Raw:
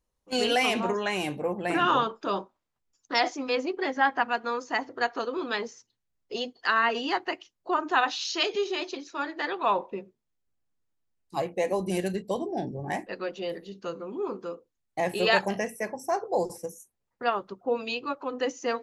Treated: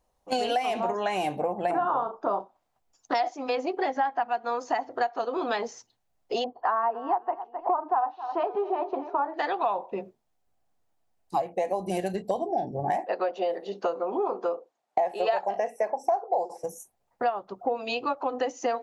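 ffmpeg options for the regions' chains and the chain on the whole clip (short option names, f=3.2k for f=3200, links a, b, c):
-filter_complex "[0:a]asettb=1/sr,asplit=3[a][b][c];[a]atrim=end=1.714[d];[b]atrim=start=1.71:end=2.4,asetpts=PTS-STARTPTS,afade=t=in:d=0.004:c=qsin,afade=t=out:st=0.686:d=0.004:c=qsin,highshelf=f=1.7k:t=q:w=1.5:g=-12.5,asplit=2[e][f];[f]adelay=38,volume=-10dB[g];[e][g]amix=inputs=2:normalize=0,atrim=end_sample=30429[h];[c]atrim=start=2.396[i];[d][h]acrossfade=d=0.004:c1=hsin:c2=qsin[j];[j][i]acrossfade=d=0.004:c1=qsin:c2=hsin,asettb=1/sr,asplit=3[k][l][m];[k]atrim=end=6.444[n];[l]atrim=start=6.44:end=9.34,asetpts=PTS-STARTPTS,afade=t=in:d=0.004:c=qsin,afade=t=out:st=2.896:d=0.004:c=qsin,lowpass=f=1k:t=q:w=2.7,aecho=1:1:262|524:0.1|0.031,atrim=end_sample=127890[o];[m]atrim=start=9.336[p];[n][o]acrossfade=d=0.004:c1=hsin:c2=qsin[q];[q][p]acrossfade=d=0.004:c1=qsin:c2=hsin,asettb=1/sr,asplit=3[r][s][t];[r]atrim=end=12.984[u];[s]atrim=start=12.98:end=16.64,asetpts=PTS-STARTPTS,afade=t=in:d=0.004:c=qsin,afade=t=out:st=3.656:d=0.004:c=qsin,highpass=280,lowpass=7.9k,equalizer=f=710:w=0.54:g=7.5[v];[t]atrim=start=16.636[w];[u][v]acrossfade=d=0.004:c1=hsin:c2=qsin[x];[x][w]acrossfade=d=0.004:c1=qsin:c2=hsin,equalizer=f=730:t=o:w=0.74:g=14,acompressor=threshold=-30dB:ratio=6,volume=5dB"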